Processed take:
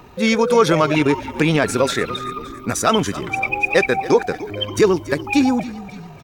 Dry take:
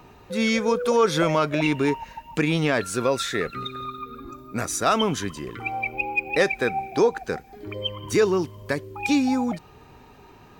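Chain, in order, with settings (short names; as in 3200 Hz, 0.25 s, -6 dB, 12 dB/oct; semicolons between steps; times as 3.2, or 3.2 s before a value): frequency-shifting echo 0.484 s, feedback 54%, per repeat -45 Hz, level -16 dB; tempo 1.7×; gain +6 dB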